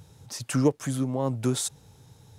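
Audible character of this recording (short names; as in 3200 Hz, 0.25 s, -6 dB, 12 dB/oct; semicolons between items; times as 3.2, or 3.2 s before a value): noise floor -55 dBFS; spectral tilt -5.5 dB/oct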